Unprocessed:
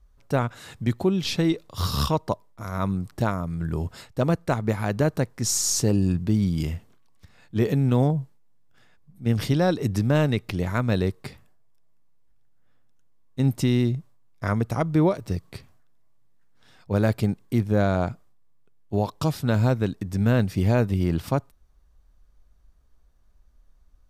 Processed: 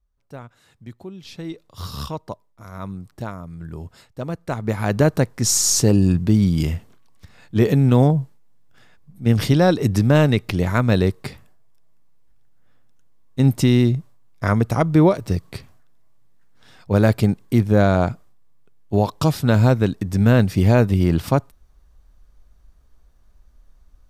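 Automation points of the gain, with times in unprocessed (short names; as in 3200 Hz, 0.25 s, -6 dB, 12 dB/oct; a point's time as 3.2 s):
1.21 s -14 dB
1.67 s -6 dB
4.29 s -6 dB
4.94 s +6 dB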